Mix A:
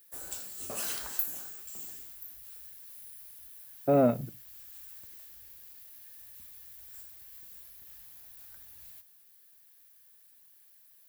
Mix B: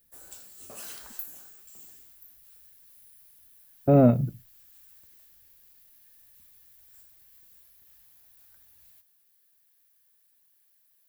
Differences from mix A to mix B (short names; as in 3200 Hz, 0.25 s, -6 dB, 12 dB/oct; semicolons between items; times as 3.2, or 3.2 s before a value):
speech: remove HPF 530 Hz 6 dB/oct; background -6.5 dB